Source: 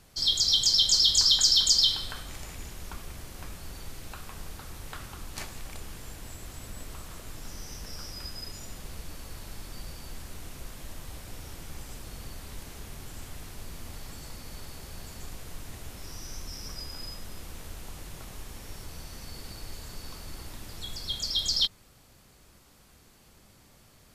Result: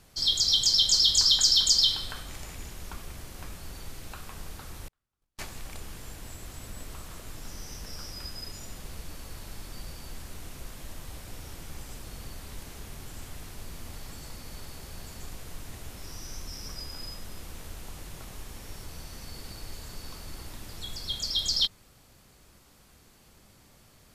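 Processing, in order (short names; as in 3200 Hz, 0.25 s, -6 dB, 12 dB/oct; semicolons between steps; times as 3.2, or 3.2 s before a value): 4.88–5.39 gate -32 dBFS, range -45 dB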